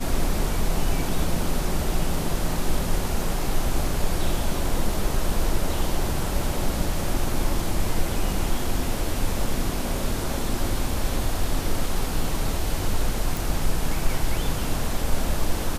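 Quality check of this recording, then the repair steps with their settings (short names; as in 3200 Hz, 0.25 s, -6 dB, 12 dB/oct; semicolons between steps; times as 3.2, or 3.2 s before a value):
13.37 pop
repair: de-click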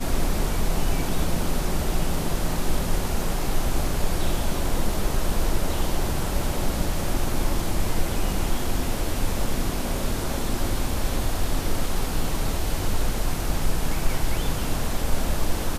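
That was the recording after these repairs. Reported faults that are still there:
none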